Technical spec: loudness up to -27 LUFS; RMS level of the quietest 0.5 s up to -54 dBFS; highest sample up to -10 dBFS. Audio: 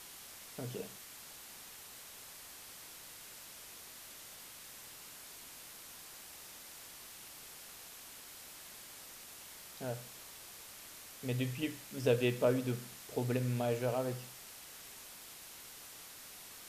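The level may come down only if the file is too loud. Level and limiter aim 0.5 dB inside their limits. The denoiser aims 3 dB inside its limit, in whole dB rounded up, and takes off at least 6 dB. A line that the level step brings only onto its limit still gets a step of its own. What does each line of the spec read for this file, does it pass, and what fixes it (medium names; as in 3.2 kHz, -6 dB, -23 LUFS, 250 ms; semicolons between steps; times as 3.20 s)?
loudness -41.5 LUFS: pass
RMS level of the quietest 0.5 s -52 dBFS: fail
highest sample -17.0 dBFS: pass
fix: noise reduction 6 dB, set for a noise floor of -52 dBFS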